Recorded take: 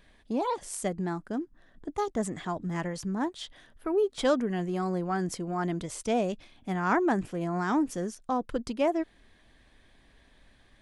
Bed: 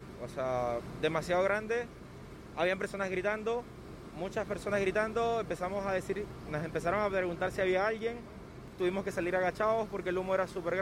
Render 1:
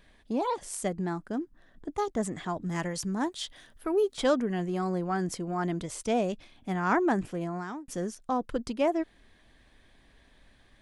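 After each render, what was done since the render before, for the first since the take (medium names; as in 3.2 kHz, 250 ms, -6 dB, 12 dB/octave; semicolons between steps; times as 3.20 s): 2.66–4.17 s: treble shelf 3.8 kHz +8.5 dB; 7.34–7.88 s: fade out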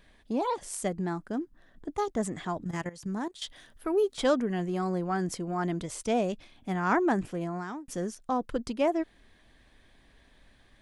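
2.64–3.42 s: level held to a coarse grid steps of 16 dB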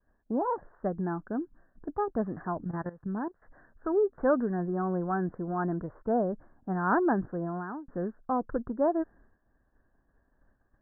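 expander -51 dBFS; steep low-pass 1.7 kHz 96 dB/octave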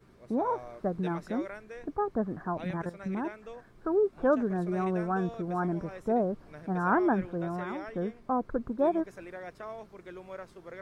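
add bed -12 dB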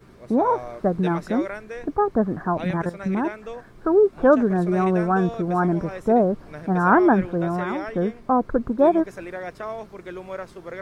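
trim +9.5 dB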